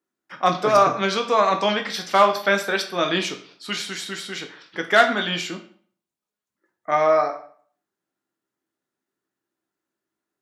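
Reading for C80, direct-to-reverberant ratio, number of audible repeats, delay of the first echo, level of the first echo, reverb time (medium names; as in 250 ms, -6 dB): 14.5 dB, 4.5 dB, no echo, no echo, no echo, 0.50 s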